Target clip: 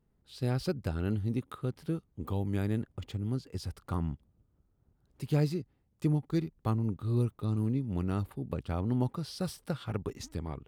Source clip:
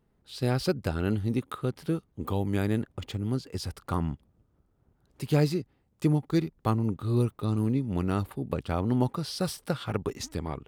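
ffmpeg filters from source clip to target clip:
-af "lowshelf=f=220:g=6.5,volume=-7.5dB"

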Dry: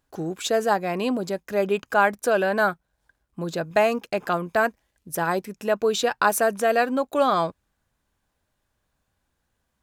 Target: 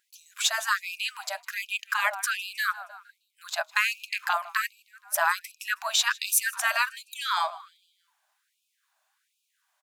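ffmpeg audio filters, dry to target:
-filter_complex "[0:a]asplit=5[a][b][c][d][e];[b]adelay=157,afreqshift=-33,volume=-23dB[f];[c]adelay=314,afreqshift=-66,volume=-28.2dB[g];[d]adelay=471,afreqshift=-99,volume=-33.4dB[h];[e]adelay=628,afreqshift=-132,volume=-38.6dB[i];[a][f][g][h][i]amix=inputs=5:normalize=0,afftfilt=real='re*lt(hypot(re,im),0.398)':imag='im*lt(hypot(re,im),0.398)':win_size=1024:overlap=0.75,afftfilt=real='re*gte(b*sr/1024,570*pow(2400/570,0.5+0.5*sin(2*PI*1.3*pts/sr)))':imag='im*gte(b*sr/1024,570*pow(2400/570,0.5+0.5*sin(2*PI*1.3*pts/sr)))':win_size=1024:overlap=0.75,volume=5dB"

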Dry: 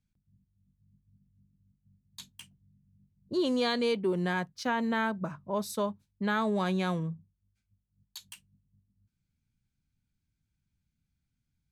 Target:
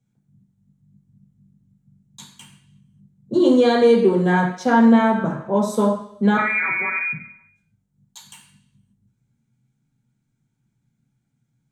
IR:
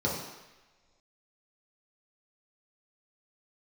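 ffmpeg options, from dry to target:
-filter_complex "[0:a]asettb=1/sr,asplit=3[a][b][c];[a]atrim=end=6.374[d];[b]atrim=start=6.37:end=7.13,asetpts=PTS-STARTPTS,afade=t=in:d=0.004:c=qsin,afade=t=out:st=0.756:d=0.004:c=qsin,lowpass=f=2.2k:t=q:w=0.5098,lowpass=f=2.2k:t=q:w=0.6013,lowpass=f=2.2k:t=q:w=0.9,lowpass=f=2.2k:t=q:w=2.563,afreqshift=-2600[e];[c]atrim=start=7.126[f];[d][e]acrossfade=d=0.004:c1=hsin:c2=qsin[g];[g][f]acrossfade=d=0.004:c1=qsin:c2=hsin[h];[1:a]atrim=start_sample=2205,asetrate=70560,aresample=44100[i];[h][i]afir=irnorm=-1:irlink=0,volume=2.5dB"

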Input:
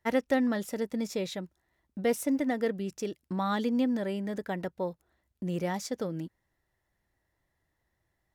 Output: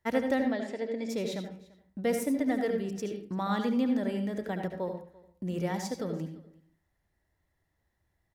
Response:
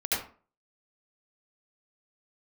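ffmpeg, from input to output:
-filter_complex "[0:a]asplit=3[a][b][c];[a]afade=t=out:st=0.4:d=0.02[d];[b]highpass=300,equalizer=f=640:t=q:w=4:g=3,equalizer=f=1.3k:t=q:w=4:g=-9,equalizer=f=2.2k:t=q:w=4:g=5,equalizer=f=5.9k:t=q:w=4:g=-10,lowpass=f=6.5k:w=0.5412,lowpass=f=6.5k:w=1.3066,afade=t=in:st=0.4:d=0.02,afade=t=out:st=1.08:d=0.02[e];[c]afade=t=in:st=1.08:d=0.02[f];[d][e][f]amix=inputs=3:normalize=0,aecho=1:1:341:0.0708,asplit=2[g][h];[1:a]atrim=start_sample=2205,lowshelf=f=240:g=10[i];[h][i]afir=irnorm=-1:irlink=0,volume=-13dB[j];[g][j]amix=inputs=2:normalize=0,volume=-3.5dB"

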